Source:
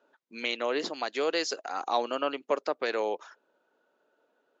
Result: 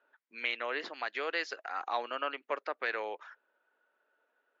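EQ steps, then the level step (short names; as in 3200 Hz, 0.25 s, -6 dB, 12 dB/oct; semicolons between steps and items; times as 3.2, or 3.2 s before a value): HPF 500 Hz 6 dB/oct; LPF 3700 Hz 12 dB/oct; bell 1800 Hz +10 dB 1.3 oct; -7.0 dB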